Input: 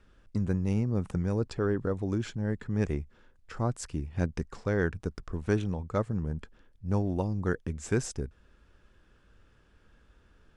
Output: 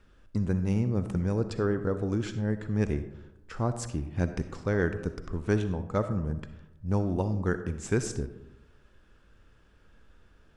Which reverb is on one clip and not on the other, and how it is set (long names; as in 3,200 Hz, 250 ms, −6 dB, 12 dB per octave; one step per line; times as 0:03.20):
comb and all-pass reverb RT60 0.95 s, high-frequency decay 0.4×, pre-delay 20 ms, DRR 10 dB
level +1 dB